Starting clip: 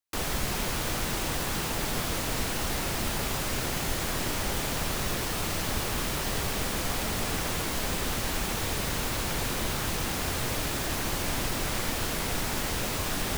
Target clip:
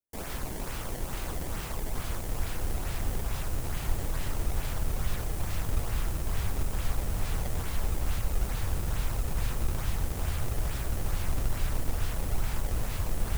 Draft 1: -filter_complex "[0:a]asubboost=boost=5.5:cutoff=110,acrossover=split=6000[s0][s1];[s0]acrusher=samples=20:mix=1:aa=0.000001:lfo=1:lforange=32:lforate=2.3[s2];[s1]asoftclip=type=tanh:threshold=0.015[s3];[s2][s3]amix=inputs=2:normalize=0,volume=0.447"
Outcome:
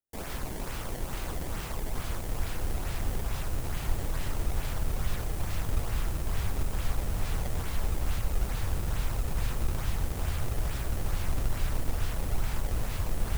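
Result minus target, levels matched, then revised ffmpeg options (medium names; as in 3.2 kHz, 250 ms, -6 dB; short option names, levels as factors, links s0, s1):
saturation: distortion +9 dB
-filter_complex "[0:a]asubboost=boost=5.5:cutoff=110,acrossover=split=6000[s0][s1];[s0]acrusher=samples=20:mix=1:aa=0.000001:lfo=1:lforange=32:lforate=2.3[s2];[s1]asoftclip=type=tanh:threshold=0.0335[s3];[s2][s3]amix=inputs=2:normalize=0,volume=0.447"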